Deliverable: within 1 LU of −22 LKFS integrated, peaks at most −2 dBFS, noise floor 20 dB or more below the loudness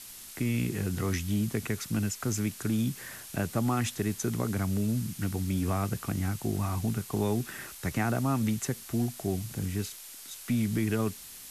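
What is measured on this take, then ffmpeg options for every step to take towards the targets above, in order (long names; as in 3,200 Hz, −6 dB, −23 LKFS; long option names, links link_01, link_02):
background noise floor −46 dBFS; target noise floor −51 dBFS; integrated loudness −31.0 LKFS; sample peak −16.0 dBFS; target loudness −22.0 LKFS
→ -af "afftdn=noise_reduction=6:noise_floor=-46"
-af "volume=9dB"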